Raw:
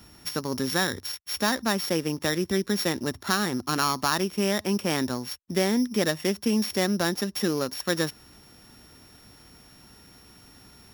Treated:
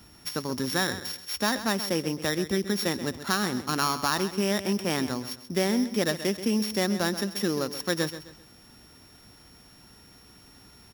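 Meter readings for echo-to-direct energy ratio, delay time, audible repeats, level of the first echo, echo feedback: -12.0 dB, 0.131 s, 3, -12.5 dB, 34%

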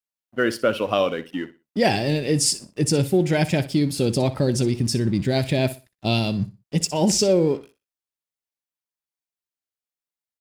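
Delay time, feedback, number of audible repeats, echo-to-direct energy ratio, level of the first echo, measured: 61 ms, 25%, 2, -15.0 dB, -15.5 dB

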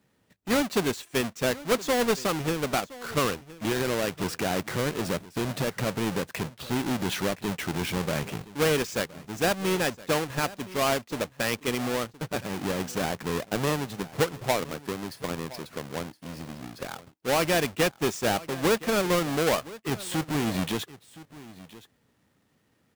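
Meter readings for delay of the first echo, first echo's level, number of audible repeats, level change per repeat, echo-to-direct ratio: 1.018 s, -18.5 dB, 1, no steady repeat, -18.5 dB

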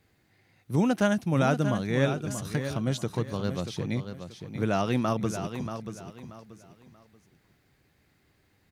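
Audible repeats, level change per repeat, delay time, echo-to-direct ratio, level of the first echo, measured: 3, -11.0 dB, 0.633 s, -8.5 dB, -9.0 dB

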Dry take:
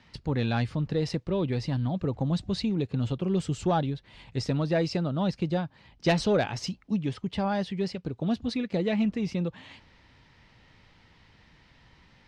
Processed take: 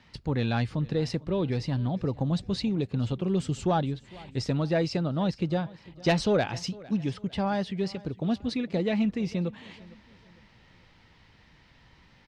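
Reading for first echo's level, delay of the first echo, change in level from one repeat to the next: -21.5 dB, 0.454 s, -8.0 dB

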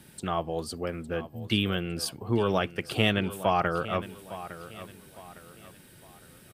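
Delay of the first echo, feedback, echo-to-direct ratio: 0.858 s, 37%, -14.0 dB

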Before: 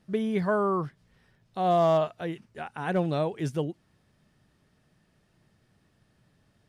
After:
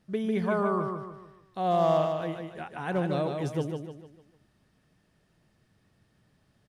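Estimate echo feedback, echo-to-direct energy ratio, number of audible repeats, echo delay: 41%, -4.0 dB, 4, 0.15 s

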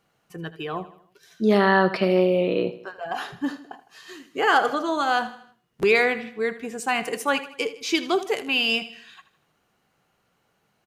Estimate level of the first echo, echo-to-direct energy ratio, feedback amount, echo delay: -15.0 dB, -14.0 dB, 47%, 79 ms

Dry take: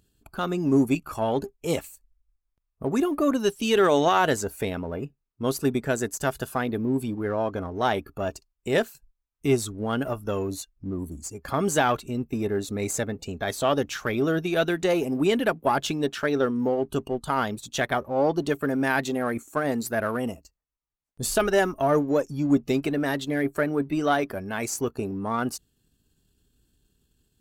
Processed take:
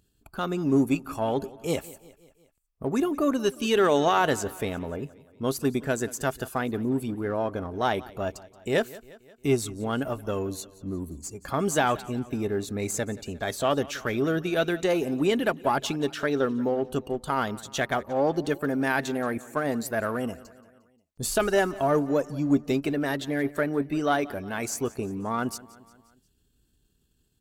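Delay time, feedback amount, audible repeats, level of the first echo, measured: 0.177 s, 56%, 3, -20.0 dB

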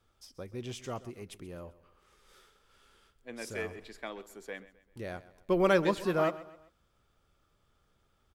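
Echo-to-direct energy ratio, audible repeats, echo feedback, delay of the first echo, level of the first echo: -16.5 dB, 3, 41%, 0.13 s, -17.5 dB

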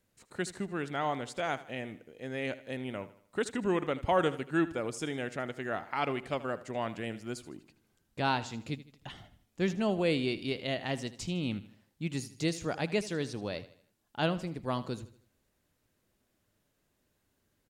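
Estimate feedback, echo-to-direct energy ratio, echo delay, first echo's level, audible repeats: 43%, -15.0 dB, 78 ms, -16.0 dB, 3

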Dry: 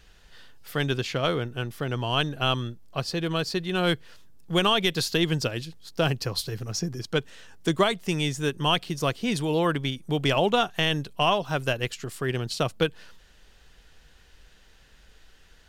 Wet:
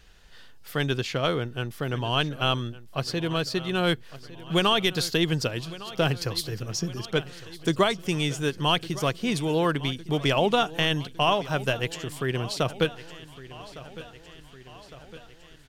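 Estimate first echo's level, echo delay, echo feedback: -17.5 dB, 1.158 s, 59%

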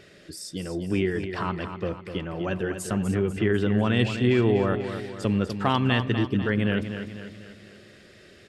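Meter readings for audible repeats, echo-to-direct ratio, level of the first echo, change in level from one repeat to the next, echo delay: 5, -8.0 dB, -9.0 dB, -6.0 dB, 0.247 s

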